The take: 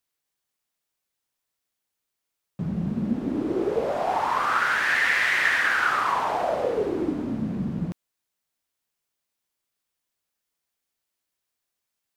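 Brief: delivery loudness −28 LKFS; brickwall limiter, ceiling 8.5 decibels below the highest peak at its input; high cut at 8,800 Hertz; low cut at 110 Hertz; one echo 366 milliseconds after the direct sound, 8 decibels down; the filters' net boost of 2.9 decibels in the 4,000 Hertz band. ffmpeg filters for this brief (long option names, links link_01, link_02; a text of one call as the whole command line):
ffmpeg -i in.wav -af "highpass=110,lowpass=8800,equalizer=frequency=4000:width_type=o:gain=4,alimiter=limit=-16.5dB:level=0:latency=1,aecho=1:1:366:0.398,volume=-2.5dB" out.wav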